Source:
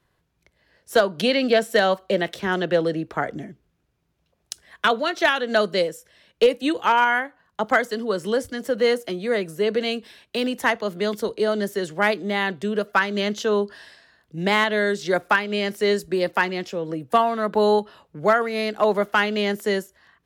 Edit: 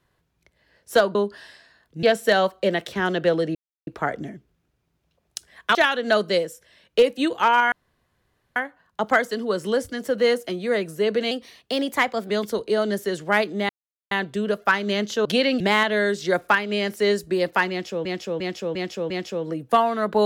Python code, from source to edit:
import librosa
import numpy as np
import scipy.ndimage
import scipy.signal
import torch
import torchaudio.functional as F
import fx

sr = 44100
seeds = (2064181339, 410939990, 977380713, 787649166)

y = fx.edit(x, sr, fx.swap(start_s=1.15, length_s=0.35, other_s=13.53, other_length_s=0.88),
    fx.insert_silence(at_s=3.02, length_s=0.32),
    fx.cut(start_s=4.9, length_s=0.29),
    fx.insert_room_tone(at_s=7.16, length_s=0.84),
    fx.speed_span(start_s=9.91, length_s=1.08, speed=1.1),
    fx.insert_silence(at_s=12.39, length_s=0.42),
    fx.repeat(start_s=16.51, length_s=0.35, count=5), tone=tone)